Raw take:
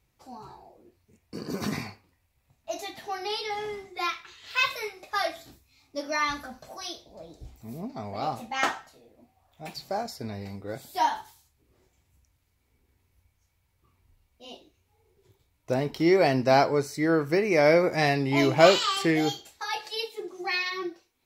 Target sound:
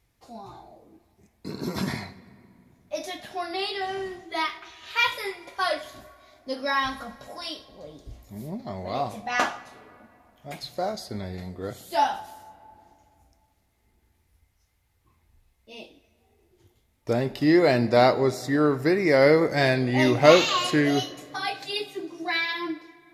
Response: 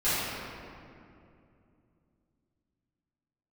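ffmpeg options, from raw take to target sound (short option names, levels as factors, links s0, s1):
-filter_complex "[0:a]asplit=2[s0][s1];[1:a]atrim=start_sample=2205,adelay=77[s2];[s1][s2]afir=irnorm=-1:irlink=0,volume=0.0237[s3];[s0][s3]amix=inputs=2:normalize=0,asetrate=40517,aresample=44100,volume=1.26"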